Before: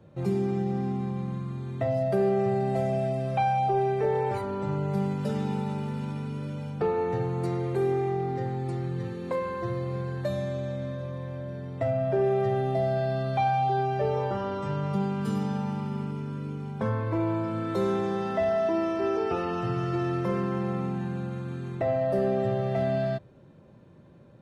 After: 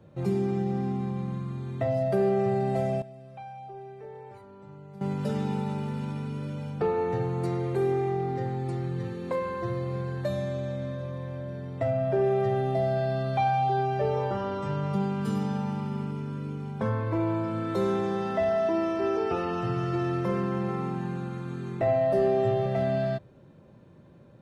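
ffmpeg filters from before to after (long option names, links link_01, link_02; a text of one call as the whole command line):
ffmpeg -i in.wav -filter_complex "[0:a]asettb=1/sr,asplit=3[link_01][link_02][link_03];[link_01]atrim=end=20.674[link_04];[link_02]atrim=start=20.67:end=22.66,asetpts=PTS-STARTPTS,afade=type=in:duration=0.004:curve=qsin,afade=type=out:start_time=1.986:duration=0.004:curve=qsin,asplit=2[link_05][link_06];[link_06]adelay=18,volume=-5dB[link_07];[link_05][link_07]amix=inputs=2:normalize=0,atrim=end_sample=87759[link_08];[link_03]atrim=start=22.656[link_09];[link_04][link_08]acrossfade=duration=0.004:curve1=hsin:curve2=qsin[link_10];[link_10][link_09]acrossfade=duration=0.004:curve1=qsin:curve2=hsin,asplit=3[link_11][link_12][link_13];[link_11]atrim=end=3.02,asetpts=PTS-STARTPTS,afade=type=out:start_time=2.7:duration=0.32:curve=log:silence=0.133352[link_14];[link_12]atrim=start=3.02:end=5.01,asetpts=PTS-STARTPTS,volume=-17.5dB[link_15];[link_13]atrim=start=5.01,asetpts=PTS-STARTPTS,afade=type=in:duration=0.32:curve=log:silence=0.133352[link_16];[link_14][link_15][link_16]concat=n=3:v=0:a=1" out.wav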